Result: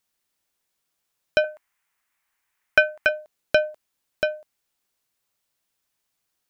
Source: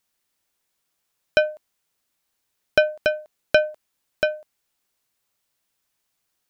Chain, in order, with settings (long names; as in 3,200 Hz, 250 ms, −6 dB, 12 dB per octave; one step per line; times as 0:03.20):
0:01.44–0:03.09: graphic EQ with 10 bands 125 Hz −6 dB, 250 Hz −3 dB, 500 Hz −6 dB, 1,000 Hz +6 dB, 2,000 Hz +10 dB, 4,000 Hz −5 dB
level −2 dB